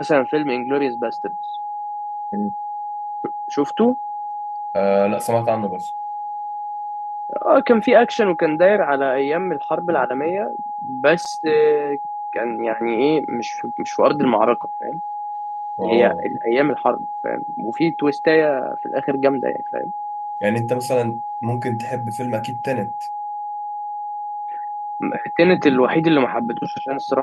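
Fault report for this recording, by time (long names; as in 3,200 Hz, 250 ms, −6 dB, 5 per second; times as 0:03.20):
whistle 830 Hz −25 dBFS
0:11.25–0:11.26: drop-out 5.3 ms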